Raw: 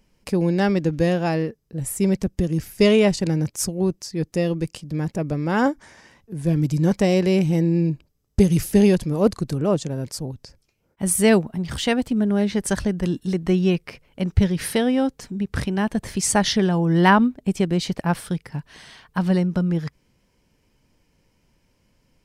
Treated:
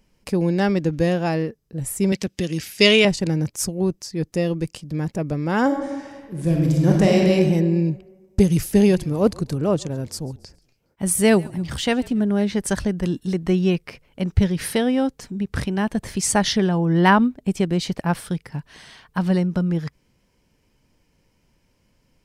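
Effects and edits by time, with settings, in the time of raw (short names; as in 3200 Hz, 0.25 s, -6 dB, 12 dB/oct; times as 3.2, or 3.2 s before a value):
2.12–3.05 weighting filter D
5.65–7.34 reverb throw, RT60 1.4 s, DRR -0.5 dB
8.63–12.22 frequency-shifting echo 0.138 s, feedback 44%, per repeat -45 Hz, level -23.5 dB
16.57–17.04 bell 9100 Hz -1.5 dB -> -9 dB 1.9 oct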